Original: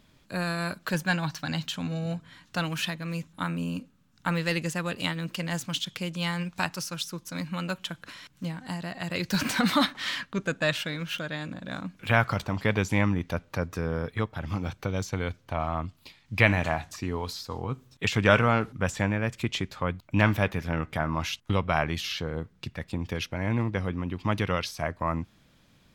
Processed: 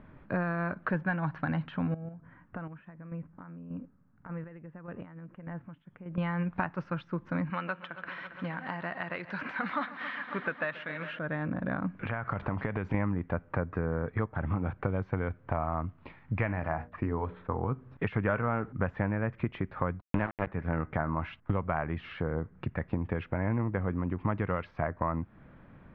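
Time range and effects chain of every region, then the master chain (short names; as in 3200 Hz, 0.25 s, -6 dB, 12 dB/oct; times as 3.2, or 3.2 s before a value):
1.94–6.18 compressor 10:1, threshold -42 dBFS + chopper 1.7 Hz, depth 60%, duty 25% + air absorption 500 m
7.5–11.19 tilt +4 dB/oct + multi-head echo 0.136 s, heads first and second, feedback 65%, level -18 dB
11.96–12.94 high shelf 3300 Hz +9 dB + compressor, threshold -31 dBFS
16.6–17.63 expander -43 dBFS + notches 60/120/180/240/300/360/420/480/540/600 Hz + careless resampling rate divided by 6×, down filtered, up hold
20.01–20.47 HPF 87 Hz + transient shaper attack +6 dB, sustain -9 dB + sample gate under -19 dBFS
whole clip: compressor 4:1, threshold -37 dBFS; LPF 1800 Hz 24 dB/oct; gain +8.5 dB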